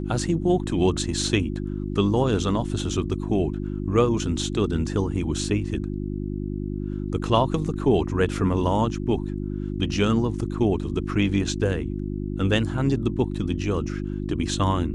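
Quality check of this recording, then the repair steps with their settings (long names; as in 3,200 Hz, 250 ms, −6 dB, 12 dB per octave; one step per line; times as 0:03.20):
mains hum 50 Hz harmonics 7 −29 dBFS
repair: hum removal 50 Hz, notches 7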